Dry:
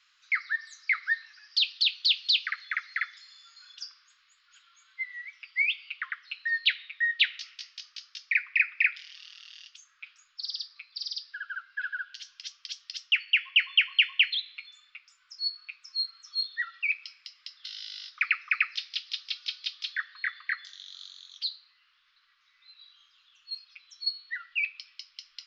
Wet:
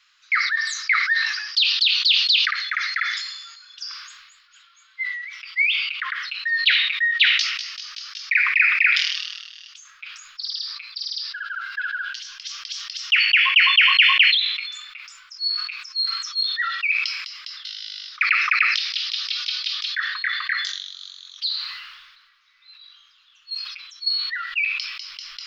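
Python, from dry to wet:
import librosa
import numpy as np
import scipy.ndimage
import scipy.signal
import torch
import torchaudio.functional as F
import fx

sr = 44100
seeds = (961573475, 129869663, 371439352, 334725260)

y = fx.sustainer(x, sr, db_per_s=43.0)
y = y * librosa.db_to_amplitude(5.5)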